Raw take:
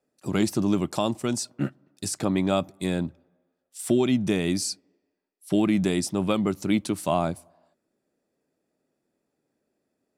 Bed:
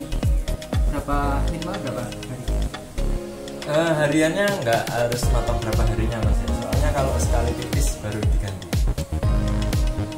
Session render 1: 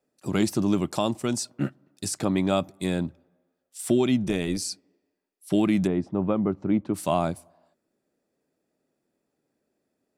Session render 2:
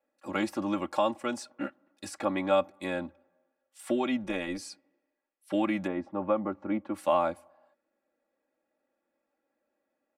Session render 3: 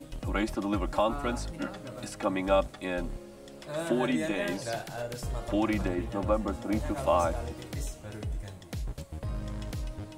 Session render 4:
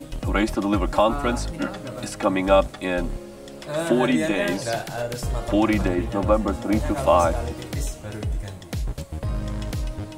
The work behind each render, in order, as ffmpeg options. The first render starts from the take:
-filter_complex "[0:a]asplit=3[a][b][c];[a]afade=t=out:st=4.23:d=0.02[d];[b]tremolo=f=180:d=0.519,afade=t=in:st=4.23:d=0.02,afade=t=out:st=4.71:d=0.02[e];[c]afade=t=in:st=4.71:d=0.02[f];[d][e][f]amix=inputs=3:normalize=0,asplit=3[g][h][i];[g]afade=t=out:st=5.86:d=0.02[j];[h]lowpass=1.2k,afade=t=in:st=5.86:d=0.02,afade=t=out:st=6.93:d=0.02[k];[i]afade=t=in:st=6.93:d=0.02[l];[j][k][l]amix=inputs=3:normalize=0"
-filter_complex "[0:a]acrossover=split=480 2600:gain=0.2 1 0.158[a][b][c];[a][b][c]amix=inputs=3:normalize=0,aecho=1:1:3.6:0.86"
-filter_complex "[1:a]volume=-14.5dB[a];[0:a][a]amix=inputs=2:normalize=0"
-af "volume=8dB"

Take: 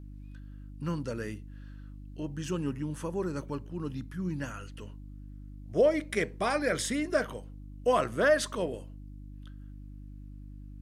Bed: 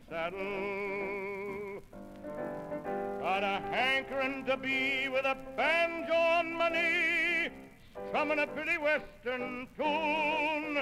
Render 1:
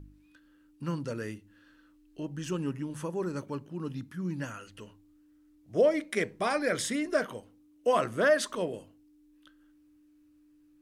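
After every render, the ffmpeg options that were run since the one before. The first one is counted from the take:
-af "bandreject=f=50:t=h:w=4,bandreject=f=100:t=h:w=4,bandreject=f=150:t=h:w=4,bandreject=f=200:t=h:w=4,bandreject=f=250:t=h:w=4"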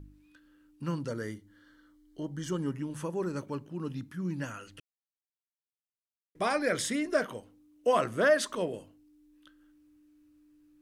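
-filter_complex "[0:a]asettb=1/sr,asplit=3[a][b][c];[a]atrim=end=1.084[d];[b]atrim=start=1.08:end=2.76,asetpts=PTS-STARTPTS,afade=t=in:d=0.004:c=qsin,afade=t=out:st=1.676:d=0.004:c=qsin,asuperstop=centerf=2600:order=8:qfactor=5.5[e];[c]atrim=start=2.756[f];[d][e]acrossfade=d=0.004:c1=hsin:c2=qsin[g];[g][f]acrossfade=d=0.004:c1=qsin:c2=hsin,asplit=3[h][i][j];[h]atrim=end=4.8,asetpts=PTS-STARTPTS,afade=t=out:st=4.796:d=0.004:c=hsin[k];[i]atrim=start=4.8:end=6.35,asetpts=PTS-STARTPTS,volume=0[l];[j]atrim=start=6.35,asetpts=PTS-STARTPTS,afade=t=in:d=0.004:c=hsin[m];[k][l][m]concat=n=3:v=0:a=1"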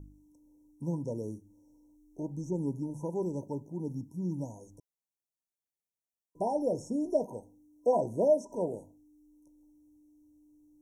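-filter_complex "[0:a]afftfilt=real='re*(1-between(b*sr/4096,1000,5400))':imag='im*(1-between(b*sr/4096,1000,5400))':win_size=4096:overlap=0.75,acrossover=split=4100[a][b];[b]acompressor=threshold=-59dB:ratio=4:attack=1:release=60[c];[a][c]amix=inputs=2:normalize=0"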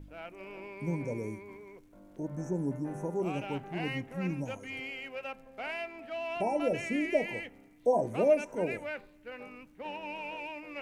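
-filter_complex "[1:a]volume=-9.5dB[a];[0:a][a]amix=inputs=2:normalize=0"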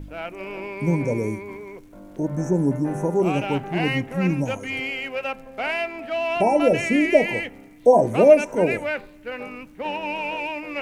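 -af "volume=12dB"

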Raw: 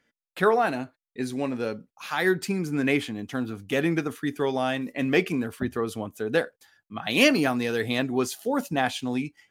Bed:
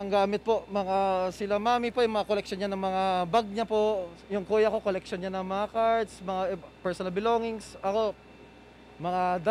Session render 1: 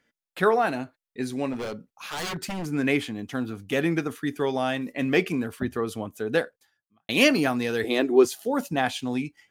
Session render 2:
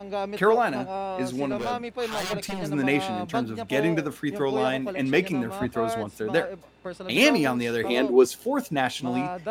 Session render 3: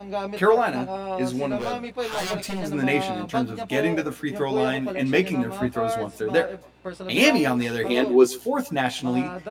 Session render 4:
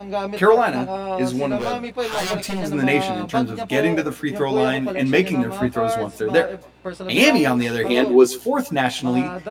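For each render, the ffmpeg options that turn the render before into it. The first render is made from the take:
-filter_complex "[0:a]asettb=1/sr,asplit=3[a][b][c];[a]atrim=end=1.534[d];[b]atrim=start=1.53:end=2.66,asetpts=PTS-STARTPTS,afade=t=in:d=0.004:c=qsin,afade=t=out:st=1.126:d=0.004:c=qsin,aeval=exprs='0.0501*(abs(mod(val(0)/0.0501+3,4)-2)-1)':c=same[e];[c]atrim=start=2.656[f];[d][e]acrossfade=d=0.004:c1=hsin:c2=qsin[g];[g][f]acrossfade=d=0.004:c1=qsin:c2=hsin,asettb=1/sr,asplit=3[h][i][j];[h]atrim=end=7.844[k];[i]atrim=start=7.84:end=8.25,asetpts=PTS-STARTPTS,afade=t=in:d=0.004:c=qsin,afade=t=out:st=0.406:d=0.004:c=qsin,highpass=f=350:t=q:w=3.8[l];[j]atrim=start=8.246[m];[k][l]acrossfade=d=0.004:c1=hsin:c2=qsin[n];[n][m]acrossfade=d=0.004:c1=qsin:c2=hsin,asplit=2[o][p];[o]atrim=end=7.09,asetpts=PTS-STARTPTS,afade=t=out:st=6.38:d=0.71:c=qua[q];[p]atrim=start=7.09,asetpts=PTS-STARTPTS,afade=t=in:d=0.004:c=hsin[r];[q][r]concat=n=2:v=0:a=1"
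-filter_complex "[1:a]volume=-5dB[a];[0:a][a]amix=inputs=2:normalize=0"
-filter_complex "[0:a]asplit=2[a][b];[b]adelay=16,volume=-4dB[c];[a][c]amix=inputs=2:normalize=0,aecho=1:1:136:0.0668"
-af "volume=4dB,alimiter=limit=-3dB:level=0:latency=1"

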